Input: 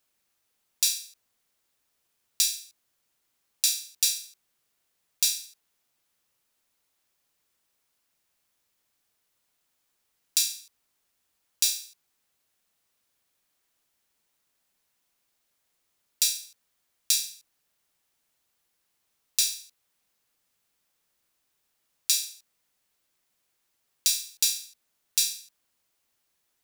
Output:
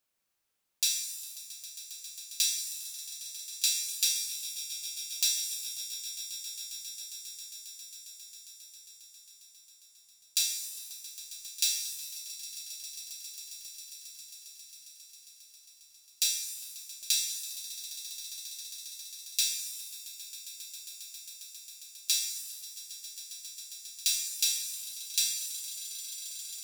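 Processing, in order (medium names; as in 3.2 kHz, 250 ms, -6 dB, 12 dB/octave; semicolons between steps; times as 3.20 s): echo with a slow build-up 135 ms, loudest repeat 8, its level -17 dB; dynamic bell 3.2 kHz, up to +5 dB, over -42 dBFS, Q 1.1; pitch-shifted reverb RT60 1.1 s, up +7 st, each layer -2 dB, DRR 5.5 dB; trim -6.5 dB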